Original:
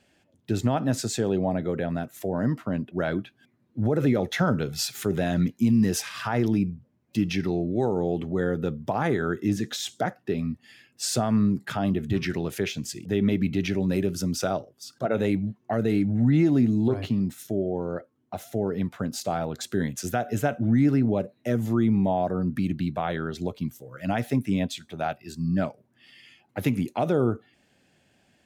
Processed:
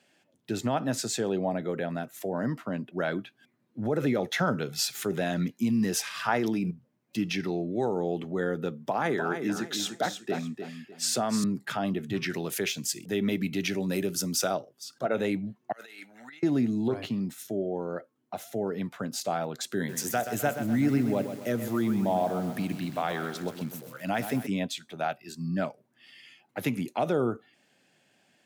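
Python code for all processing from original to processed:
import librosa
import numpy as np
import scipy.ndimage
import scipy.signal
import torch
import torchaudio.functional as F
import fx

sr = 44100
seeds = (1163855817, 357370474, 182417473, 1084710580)

y = fx.chain(x, sr, fx.low_shelf(hz=110.0, db=-11.5),
    fx.env_flatten(amount_pct=100), at=(6.28, 6.71))
y = fx.chain(y, sr, fx.highpass(hz=140.0, slope=12),
    fx.echo_feedback(ms=301, feedback_pct=28, wet_db=-8.0), at=(8.7, 11.44))
y = fx.chain(y, sr, fx.highpass(hz=49.0, slope=12),
    fx.high_shelf(hz=6100.0, db=9.5), at=(12.32, 14.55))
y = fx.chain(y, sr, fx.highpass(hz=1300.0, slope=12),
    fx.over_compress(threshold_db=-45.0, ratio=-0.5), at=(15.72, 16.43))
y = fx.chain(y, sr, fx.high_shelf(hz=11000.0, db=11.5),
    fx.echo_crushed(ms=128, feedback_pct=55, bits=7, wet_db=-9), at=(19.76, 24.47))
y = scipy.signal.sosfilt(scipy.signal.butter(4, 120.0, 'highpass', fs=sr, output='sos'), y)
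y = fx.low_shelf(y, sr, hz=390.0, db=-6.5)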